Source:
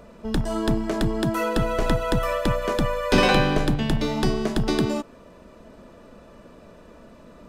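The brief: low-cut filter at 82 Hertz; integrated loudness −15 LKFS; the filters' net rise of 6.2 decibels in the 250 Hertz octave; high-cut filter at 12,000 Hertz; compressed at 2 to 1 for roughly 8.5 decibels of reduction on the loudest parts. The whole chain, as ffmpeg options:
ffmpeg -i in.wav -af "highpass=82,lowpass=12000,equalizer=frequency=250:width_type=o:gain=8,acompressor=threshold=-25dB:ratio=2,volume=10.5dB" out.wav

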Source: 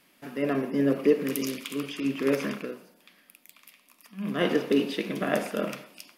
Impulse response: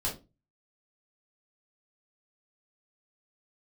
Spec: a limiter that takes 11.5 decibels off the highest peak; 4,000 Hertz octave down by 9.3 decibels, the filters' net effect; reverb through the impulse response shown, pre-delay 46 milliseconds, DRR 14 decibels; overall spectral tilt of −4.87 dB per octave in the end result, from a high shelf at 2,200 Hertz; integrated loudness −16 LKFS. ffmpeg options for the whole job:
-filter_complex "[0:a]highshelf=frequency=2200:gain=-6.5,equalizer=frequency=4000:width_type=o:gain=-7.5,alimiter=limit=-21.5dB:level=0:latency=1,asplit=2[link_01][link_02];[1:a]atrim=start_sample=2205,adelay=46[link_03];[link_02][link_03]afir=irnorm=-1:irlink=0,volume=-19dB[link_04];[link_01][link_04]amix=inputs=2:normalize=0,volume=16.5dB"

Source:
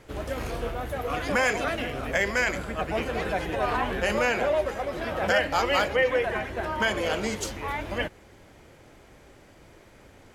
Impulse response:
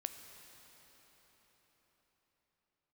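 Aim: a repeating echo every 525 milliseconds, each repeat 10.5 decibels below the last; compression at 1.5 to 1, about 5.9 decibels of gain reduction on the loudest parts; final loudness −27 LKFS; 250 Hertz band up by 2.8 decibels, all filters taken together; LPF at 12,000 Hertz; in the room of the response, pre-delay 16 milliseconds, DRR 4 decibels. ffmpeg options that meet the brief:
-filter_complex "[0:a]lowpass=12000,equalizer=frequency=250:width_type=o:gain=3.5,acompressor=threshold=-35dB:ratio=1.5,aecho=1:1:525|1050|1575:0.299|0.0896|0.0269,asplit=2[link_01][link_02];[1:a]atrim=start_sample=2205,adelay=16[link_03];[link_02][link_03]afir=irnorm=-1:irlink=0,volume=-2dB[link_04];[link_01][link_04]amix=inputs=2:normalize=0,volume=2.5dB"

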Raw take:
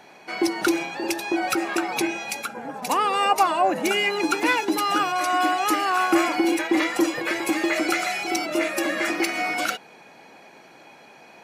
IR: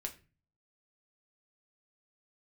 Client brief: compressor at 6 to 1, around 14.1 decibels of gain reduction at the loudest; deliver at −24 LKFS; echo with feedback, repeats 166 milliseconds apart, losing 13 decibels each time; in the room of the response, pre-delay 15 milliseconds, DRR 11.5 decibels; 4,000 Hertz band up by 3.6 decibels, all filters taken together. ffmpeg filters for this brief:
-filter_complex "[0:a]equalizer=frequency=4000:width_type=o:gain=5,acompressor=threshold=-31dB:ratio=6,aecho=1:1:166|332|498:0.224|0.0493|0.0108,asplit=2[link_01][link_02];[1:a]atrim=start_sample=2205,adelay=15[link_03];[link_02][link_03]afir=irnorm=-1:irlink=0,volume=-10dB[link_04];[link_01][link_04]amix=inputs=2:normalize=0,volume=8dB"

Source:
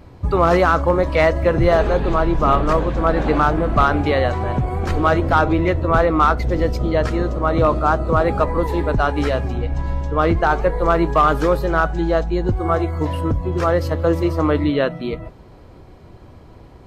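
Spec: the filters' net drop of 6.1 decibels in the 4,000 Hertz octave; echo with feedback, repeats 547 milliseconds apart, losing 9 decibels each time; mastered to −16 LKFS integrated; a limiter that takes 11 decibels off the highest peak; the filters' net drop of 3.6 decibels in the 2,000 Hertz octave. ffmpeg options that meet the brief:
ffmpeg -i in.wav -af "equalizer=frequency=2000:width_type=o:gain=-4,equalizer=frequency=4000:width_type=o:gain=-6.5,alimiter=limit=-16dB:level=0:latency=1,aecho=1:1:547|1094|1641|2188:0.355|0.124|0.0435|0.0152,volume=8dB" out.wav

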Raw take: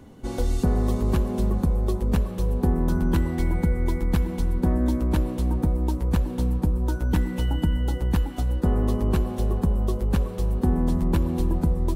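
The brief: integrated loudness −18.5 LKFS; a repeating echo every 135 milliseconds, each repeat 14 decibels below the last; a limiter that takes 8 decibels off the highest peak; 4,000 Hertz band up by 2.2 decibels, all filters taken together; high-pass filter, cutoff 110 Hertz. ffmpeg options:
ffmpeg -i in.wav -af "highpass=110,equalizer=frequency=4000:width_type=o:gain=3,alimiter=limit=-19dB:level=0:latency=1,aecho=1:1:135|270:0.2|0.0399,volume=11.5dB" out.wav

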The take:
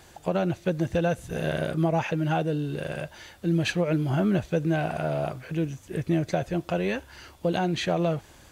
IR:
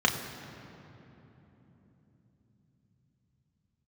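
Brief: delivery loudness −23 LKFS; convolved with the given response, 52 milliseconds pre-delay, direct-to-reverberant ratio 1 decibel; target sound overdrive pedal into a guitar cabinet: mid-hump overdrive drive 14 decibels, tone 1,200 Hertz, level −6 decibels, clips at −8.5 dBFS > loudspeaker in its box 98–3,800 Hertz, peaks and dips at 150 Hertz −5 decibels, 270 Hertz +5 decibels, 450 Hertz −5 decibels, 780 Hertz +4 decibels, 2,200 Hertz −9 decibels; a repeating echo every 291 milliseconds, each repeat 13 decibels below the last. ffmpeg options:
-filter_complex "[0:a]aecho=1:1:291|582|873:0.224|0.0493|0.0108,asplit=2[link_01][link_02];[1:a]atrim=start_sample=2205,adelay=52[link_03];[link_02][link_03]afir=irnorm=-1:irlink=0,volume=-14.5dB[link_04];[link_01][link_04]amix=inputs=2:normalize=0,asplit=2[link_05][link_06];[link_06]highpass=frequency=720:poles=1,volume=14dB,asoftclip=type=tanh:threshold=-8.5dB[link_07];[link_05][link_07]amix=inputs=2:normalize=0,lowpass=frequency=1200:poles=1,volume=-6dB,highpass=98,equalizer=frequency=150:width_type=q:width=4:gain=-5,equalizer=frequency=270:width_type=q:width=4:gain=5,equalizer=frequency=450:width_type=q:width=4:gain=-5,equalizer=frequency=780:width_type=q:width=4:gain=4,equalizer=frequency=2200:width_type=q:width=4:gain=-9,lowpass=frequency=3800:width=0.5412,lowpass=frequency=3800:width=1.3066,volume=1dB"

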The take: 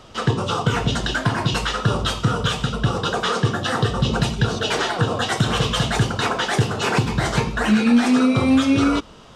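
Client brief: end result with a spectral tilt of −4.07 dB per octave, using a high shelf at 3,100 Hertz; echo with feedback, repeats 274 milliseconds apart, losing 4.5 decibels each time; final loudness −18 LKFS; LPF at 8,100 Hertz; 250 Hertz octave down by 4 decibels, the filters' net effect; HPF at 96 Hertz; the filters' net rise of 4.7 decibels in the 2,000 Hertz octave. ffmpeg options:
ffmpeg -i in.wav -af "highpass=96,lowpass=8100,equalizer=frequency=250:width_type=o:gain=-4.5,equalizer=frequency=2000:width_type=o:gain=5.5,highshelf=frequency=3100:gain=3,aecho=1:1:274|548|822|1096|1370|1644|1918|2192|2466:0.596|0.357|0.214|0.129|0.0772|0.0463|0.0278|0.0167|0.01" out.wav

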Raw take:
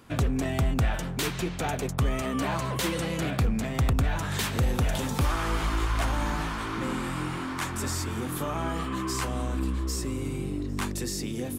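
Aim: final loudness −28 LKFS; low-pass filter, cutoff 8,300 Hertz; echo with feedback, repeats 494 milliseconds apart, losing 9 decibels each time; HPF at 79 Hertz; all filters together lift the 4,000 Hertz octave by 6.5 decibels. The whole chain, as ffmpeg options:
ffmpeg -i in.wav -af "highpass=79,lowpass=8300,equalizer=frequency=4000:width_type=o:gain=8.5,aecho=1:1:494|988|1482|1976:0.355|0.124|0.0435|0.0152,volume=0.5dB" out.wav

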